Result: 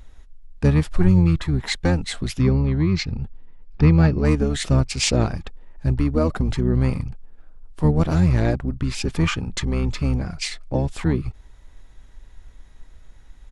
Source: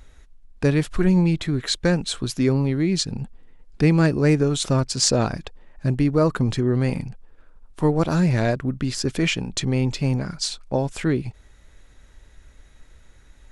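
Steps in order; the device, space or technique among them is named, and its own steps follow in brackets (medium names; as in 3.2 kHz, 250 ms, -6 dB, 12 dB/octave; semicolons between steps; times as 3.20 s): 2.41–4.25 s: low-pass 5.5 kHz 24 dB/octave; octave pedal (harmony voices -12 st -2 dB); bass shelf 160 Hz +5.5 dB; trim -3.5 dB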